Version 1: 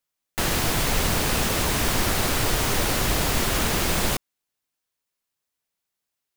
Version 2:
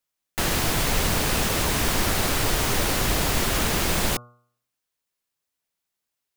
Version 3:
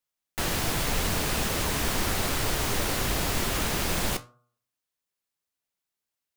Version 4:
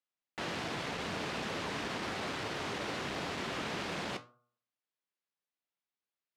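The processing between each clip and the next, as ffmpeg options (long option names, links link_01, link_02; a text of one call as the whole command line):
ffmpeg -i in.wav -af "bandreject=frequency=120.5:width_type=h:width=4,bandreject=frequency=241:width_type=h:width=4,bandreject=frequency=361.5:width_type=h:width=4,bandreject=frequency=482:width_type=h:width=4,bandreject=frequency=602.5:width_type=h:width=4,bandreject=frequency=723:width_type=h:width=4,bandreject=frequency=843.5:width_type=h:width=4,bandreject=frequency=964:width_type=h:width=4,bandreject=frequency=1084.5:width_type=h:width=4,bandreject=frequency=1205:width_type=h:width=4,bandreject=frequency=1325.5:width_type=h:width=4,bandreject=frequency=1446:width_type=h:width=4" out.wav
ffmpeg -i in.wav -af "flanger=delay=9.8:depth=6.1:regen=-67:speed=1.8:shape=sinusoidal" out.wav
ffmpeg -i in.wav -af "asoftclip=type=tanh:threshold=-21.5dB,highpass=160,lowpass=3900,volume=-5dB" out.wav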